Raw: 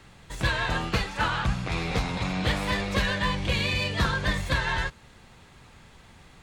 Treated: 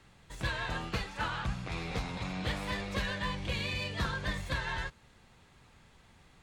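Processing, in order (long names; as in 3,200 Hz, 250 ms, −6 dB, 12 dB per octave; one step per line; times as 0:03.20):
level −8.5 dB
Ogg Vorbis 192 kbit/s 48,000 Hz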